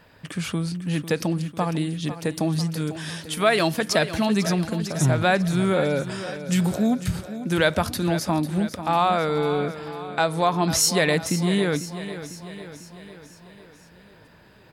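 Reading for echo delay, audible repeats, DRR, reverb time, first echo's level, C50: 498 ms, 5, no reverb, no reverb, -12.5 dB, no reverb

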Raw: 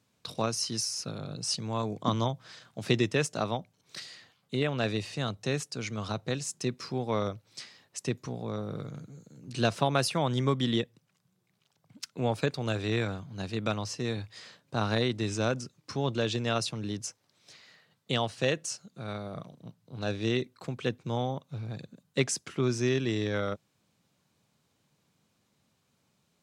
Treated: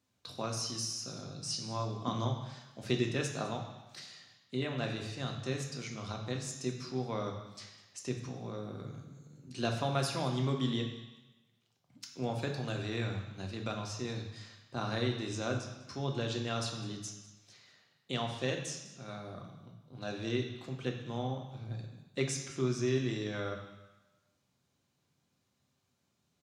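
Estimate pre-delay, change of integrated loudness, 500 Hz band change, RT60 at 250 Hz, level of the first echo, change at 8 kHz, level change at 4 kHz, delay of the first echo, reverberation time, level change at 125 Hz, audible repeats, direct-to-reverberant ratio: 3 ms, -5.0 dB, -6.0 dB, 1.1 s, -19.5 dB, -5.0 dB, -5.0 dB, 203 ms, 1.1 s, -4.0 dB, 1, 2.0 dB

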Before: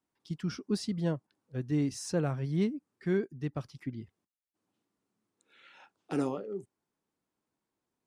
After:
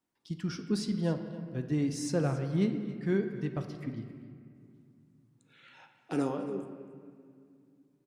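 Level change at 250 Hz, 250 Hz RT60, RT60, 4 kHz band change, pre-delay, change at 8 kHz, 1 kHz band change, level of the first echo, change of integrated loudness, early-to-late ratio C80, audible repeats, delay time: +1.5 dB, 3.4 s, 2.2 s, +0.5 dB, 3 ms, +0.5 dB, +1.0 dB, -17.5 dB, +1.0 dB, 8.5 dB, 1, 273 ms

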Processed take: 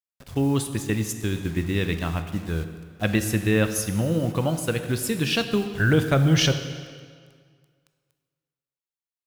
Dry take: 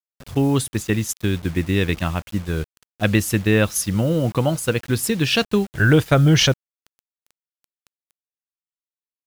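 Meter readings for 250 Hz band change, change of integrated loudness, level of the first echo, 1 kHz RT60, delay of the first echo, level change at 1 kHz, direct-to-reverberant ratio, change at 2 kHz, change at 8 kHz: -4.0 dB, -4.0 dB, no echo, 1.9 s, no echo, -4.5 dB, 8.0 dB, -4.5 dB, -4.5 dB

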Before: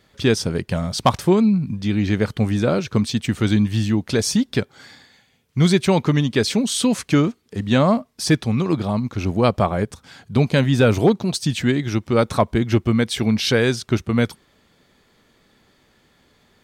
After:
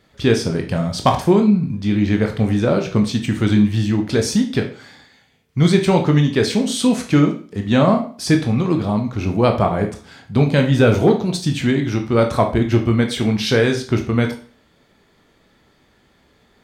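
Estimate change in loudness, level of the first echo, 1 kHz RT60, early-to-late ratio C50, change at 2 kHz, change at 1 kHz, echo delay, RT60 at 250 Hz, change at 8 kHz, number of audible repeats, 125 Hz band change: +2.0 dB, no echo, 0.40 s, 10.0 dB, +1.0 dB, +2.0 dB, no echo, 0.40 s, -1.5 dB, no echo, +2.0 dB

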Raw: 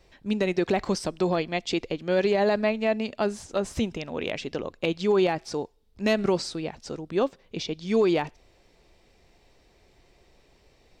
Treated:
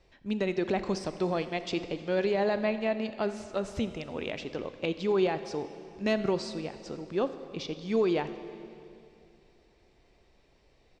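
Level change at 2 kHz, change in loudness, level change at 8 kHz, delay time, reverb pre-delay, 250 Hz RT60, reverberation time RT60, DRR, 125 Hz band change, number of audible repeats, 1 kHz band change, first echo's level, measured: -4.5 dB, -4.5 dB, -8.5 dB, 83 ms, 26 ms, 3.0 s, 2.6 s, 10.5 dB, -4.5 dB, 1, -4.5 dB, -21.0 dB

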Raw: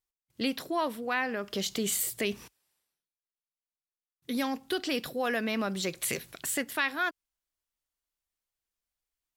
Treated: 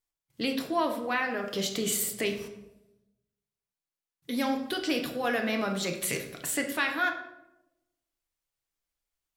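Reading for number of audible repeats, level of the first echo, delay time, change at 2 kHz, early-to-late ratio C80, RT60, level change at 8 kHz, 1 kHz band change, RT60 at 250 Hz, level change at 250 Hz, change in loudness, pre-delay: no echo, no echo, no echo, +1.5 dB, 10.5 dB, 0.90 s, +1.0 dB, +2.0 dB, 1.1 s, +2.0 dB, +1.5 dB, 6 ms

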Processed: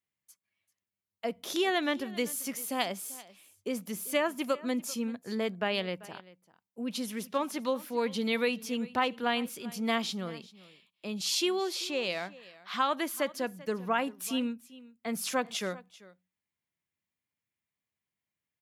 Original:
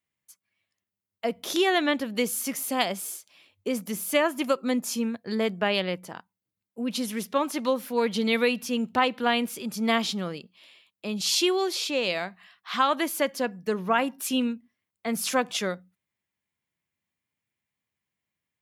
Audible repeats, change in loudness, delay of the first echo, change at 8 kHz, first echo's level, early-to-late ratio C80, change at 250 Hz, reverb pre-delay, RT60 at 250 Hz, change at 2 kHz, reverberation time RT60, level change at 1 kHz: 1, -5.5 dB, 390 ms, -5.5 dB, -20.0 dB, no reverb, -5.5 dB, no reverb, no reverb, -5.5 dB, no reverb, -5.5 dB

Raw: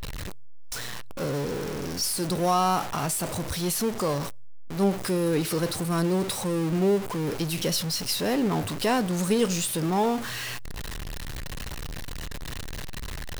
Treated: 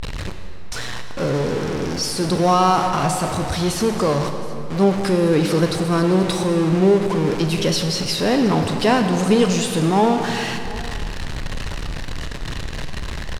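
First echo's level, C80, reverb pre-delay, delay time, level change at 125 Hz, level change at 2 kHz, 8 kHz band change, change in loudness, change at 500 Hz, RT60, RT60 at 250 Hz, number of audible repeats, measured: -20.5 dB, 7.0 dB, 30 ms, 720 ms, +8.5 dB, +8.0 dB, +2.0 dB, +8.0 dB, +8.5 dB, 2.7 s, 2.6 s, 1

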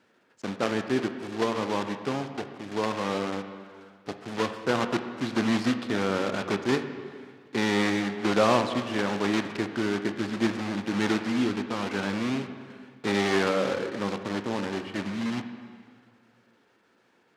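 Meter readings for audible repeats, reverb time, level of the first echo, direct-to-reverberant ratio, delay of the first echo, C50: no echo, 2.0 s, no echo, 7.5 dB, no echo, 9.0 dB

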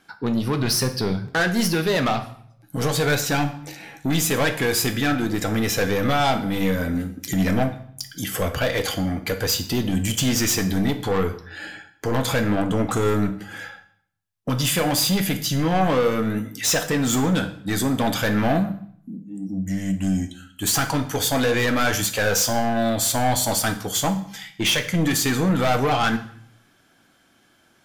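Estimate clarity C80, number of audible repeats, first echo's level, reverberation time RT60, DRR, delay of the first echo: 15.0 dB, no echo, no echo, 0.60 s, 7.0 dB, no echo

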